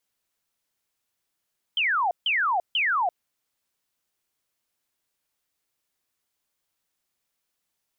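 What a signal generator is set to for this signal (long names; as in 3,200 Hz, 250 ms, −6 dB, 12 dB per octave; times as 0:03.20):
repeated falling chirps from 3,200 Hz, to 670 Hz, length 0.34 s sine, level −20.5 dB, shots 3, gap 0.15 s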